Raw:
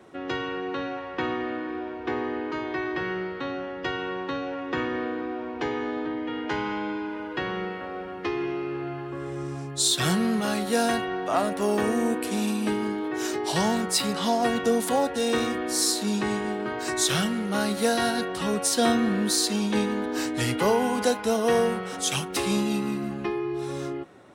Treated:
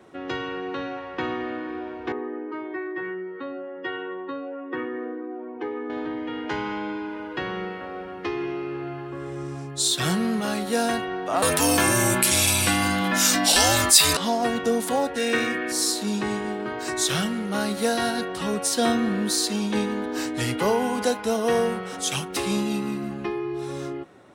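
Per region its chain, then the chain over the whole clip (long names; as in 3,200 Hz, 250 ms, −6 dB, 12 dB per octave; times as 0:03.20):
0:02.12–0:05.90: expanding power law on the bin magnitudes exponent 1.7 + high-pass filter 280 Hz 6 dB per octave + notch filter 690 Hz, Q 9.1
0:11.42–0:14.17: frequency shifter −120 Hz + spectral tilt +3.5 dB per octave + envelope flattener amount 50%
0:15.16–0:15.72: high-pass filter 110 Hz + flat-topped bell 2,000 Hz +8.5 dB 1 octave + notch filter 860 Hz, Q 6
whole clip: no processing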